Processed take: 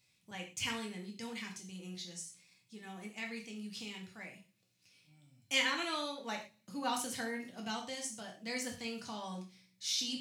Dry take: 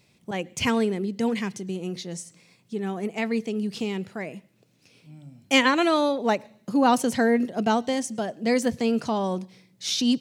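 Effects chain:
guitar amp tone stack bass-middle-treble 5-5-5
convolution reverb, pre-delay 3 ms, DRR 0 dB
level −3 dB

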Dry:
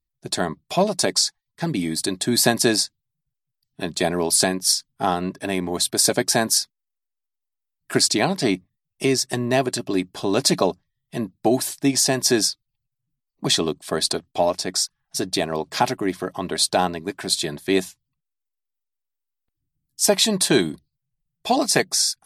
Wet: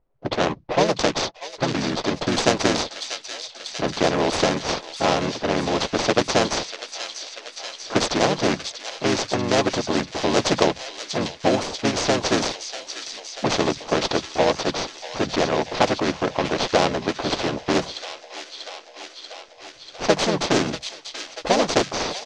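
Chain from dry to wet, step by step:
running median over 25 samples
low-pass that shuts in the quiet parts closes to 2,800 Hz, open at −16 dBFS
transistor ladder low-pass 7,000 Hz, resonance 50%
parametric band 590 Hz +14 dB 1.8 octaves
delay with a high-pass on its return 639 ms, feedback 73%, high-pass 3,200 Hz, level −8.5 dB
pitch-shifted copies added −4 semitones −1 dB
every bin compressed towards the loudest bin 2 to 1
level −2.5 dB

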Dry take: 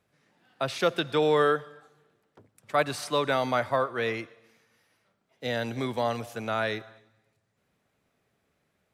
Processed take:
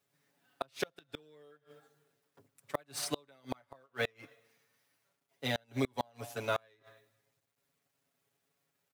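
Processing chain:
mu-law and A-law mismatch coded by A
high-pass filter 90 Hz 6 dB per octave
high-shelf EQ 7,600 Hz +6.5 dB
comb filter 7.2 ms, depth 97%
gate with flip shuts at −16 dBFS, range −35 dB
level −3 dB

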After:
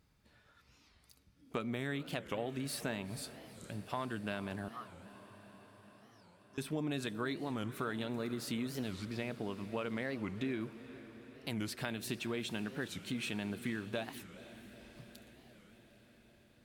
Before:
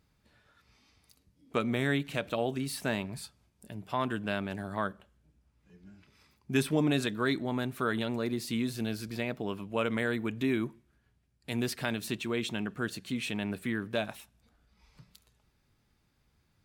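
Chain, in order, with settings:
downward compressor 3 to 1, threshold −35 dBFS, peak gain reduction 10.5 dB
0:04.68–0:06.58: pair of resonant band-passes 2,300 Hz, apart 2.3 octaves
0:08.94–0:10.61: high-frequency loss of the air 52 metres
feedback delay with all-pass diffusion 462 ms, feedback 69%, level −15 dB
wow of a warped record 45 rpm, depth 250 cents
level −1 dB

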